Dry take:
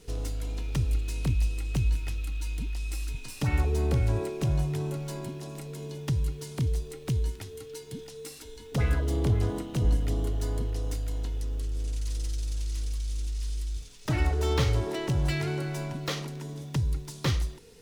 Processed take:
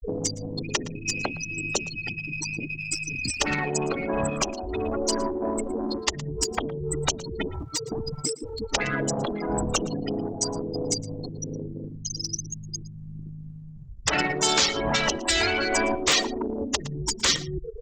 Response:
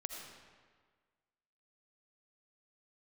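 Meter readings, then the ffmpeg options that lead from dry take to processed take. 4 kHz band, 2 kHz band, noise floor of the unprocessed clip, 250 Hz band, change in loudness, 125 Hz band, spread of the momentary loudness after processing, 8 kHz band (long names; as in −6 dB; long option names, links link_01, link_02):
+13.5 dB, +12.5 dB, −46 dBFS, +5.0 dB, +4.0 dB, −7.0 dB, 13 LU, +15.5 dB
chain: -filter_complex "[1:a]atrim=start_sample=2205,atrim=end_sample=3087[link_01];[0:a][link_01]afir=irnorm=-1:irlink=0,afftfilt=real='re*gte(hypot(re,im),0.0126)':imag='im*gte(hypot(re,im),0.0126)':win_size=1024:overlap=0.75,acrossover=split=250|5900[link_02][link_03][link_04];[link_04]crystalizer=i=7:c=0[link_05];[link_02][link_03][link_05]amix=inputs=3:normalize=0,acompressor=threshold=-42dB:ratio=8,aresample=16000,asoftclip=type=tanh:threshold=-39.5dB,aresample=44100,crystalizer=i=6.5:c=0,aphaser=in_gain=1:out_gain=1:delay=1.3:decay=0.29:speed=1.2:type=sinusoidal,afftfilt=real='re*lt(hypot(re,im),0.0224)':imag='im*lt(hypot(re,im),0.0224)':win_size=1024:overlap=0.75,aecho=1:1:114:0.1,alimiter=level_in=34dB:limit=-1dB:release=50:level=0:latency=1,volume=-8dB"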